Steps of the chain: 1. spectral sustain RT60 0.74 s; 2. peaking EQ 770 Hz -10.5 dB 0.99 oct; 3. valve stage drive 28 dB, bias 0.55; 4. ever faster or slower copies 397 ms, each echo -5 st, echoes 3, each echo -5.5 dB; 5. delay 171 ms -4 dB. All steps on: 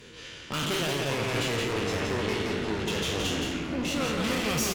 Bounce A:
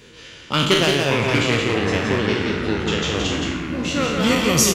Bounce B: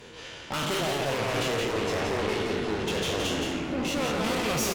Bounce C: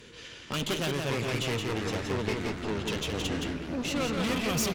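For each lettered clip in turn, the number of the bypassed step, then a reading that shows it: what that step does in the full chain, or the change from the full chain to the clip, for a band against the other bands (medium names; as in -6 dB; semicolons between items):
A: 3, crest factor change +5.5 dB; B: 2, 1 kHz band +3.0 dB; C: 1, 125 Hz band +2.5 dB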